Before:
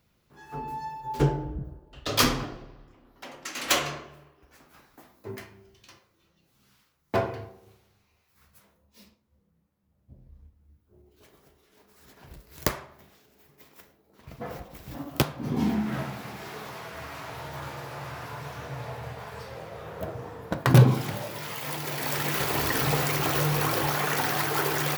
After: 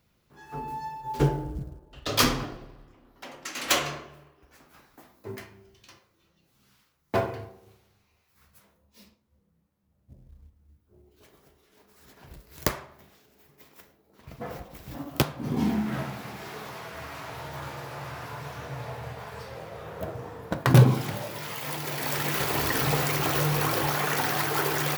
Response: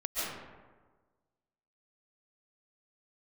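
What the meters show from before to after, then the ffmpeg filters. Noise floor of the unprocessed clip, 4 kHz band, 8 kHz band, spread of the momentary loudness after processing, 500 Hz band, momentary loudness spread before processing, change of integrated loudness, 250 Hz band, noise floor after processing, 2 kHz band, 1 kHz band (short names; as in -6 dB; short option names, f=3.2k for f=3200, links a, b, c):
-70 dBFS, 0.0 dB, 0.0 dB, 17 LU, 0.0 dB, 17 LU, 0.0 dB, 0.0 dB, -70 dBFS, 0.0 dB, 0.0 dB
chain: -af "acrusher=bits=8:mode=log:mix=0:aa=0.000001"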